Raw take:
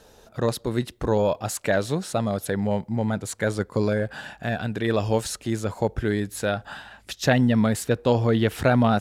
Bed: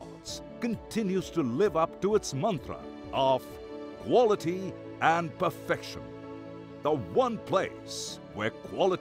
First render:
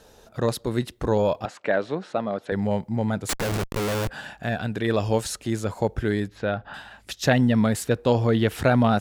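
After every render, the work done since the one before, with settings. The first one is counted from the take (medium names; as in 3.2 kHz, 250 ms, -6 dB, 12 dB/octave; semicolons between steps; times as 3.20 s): 1.45–2.52 s: band-pass 240–2600 Hz; 3.29–4.09 s: Schmitt trigger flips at -34.5 dBFS; 6.28–6.74 s: distance through air 260 m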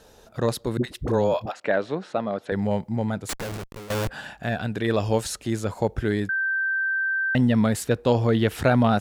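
0.77–1.60 s: phase dispersion highs, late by 66 ms, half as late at 460 Hz; 2.90–3.90 s: fade out, to -17 dB; 6.29–7.35 s: bleep 1.56 kHz -21.5 dBFS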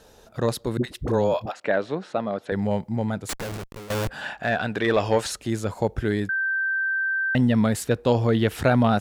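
4.21–5.32 s: overdrive pedal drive 14 dB, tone 2.5 kHz, clips at -8.5 dBFS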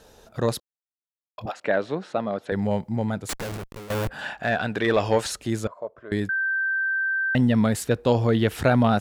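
0.60–1.38 s: mute; 3.51–4.19 s: dynamic bell 5.8 kHz, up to -5 dB, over -48 dBFS, Q 0.71; 5.67–6.12 s: two resonant band-passes 820 Hz, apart 0.75 oct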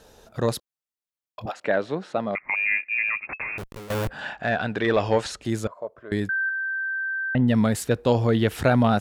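2.35–3.58 s: frequency inversion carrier 2.6 kHz; 4.11–5.45 s: distance through air 59 m; 6.49–7.48 s: distance through air 450 m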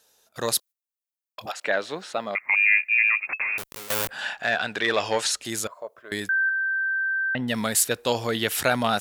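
gate -47 dBFS, range -14 dB; tilt EQ +4 dB/octave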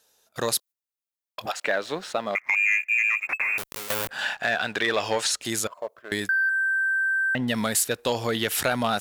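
waveshaping leveller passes 1; compression 2:1, threshold -24 dBFS, peak gain reduction 6.5 dB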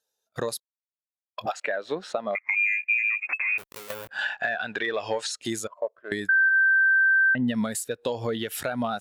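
compression 12:1, threshold -29 dBFS, peak gain reduction 11 dB; spectral contrast expander 1.5:1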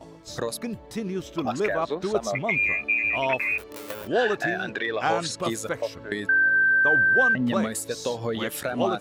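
add bed -1 dB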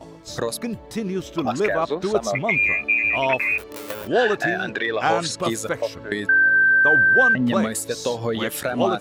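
trim +4 dB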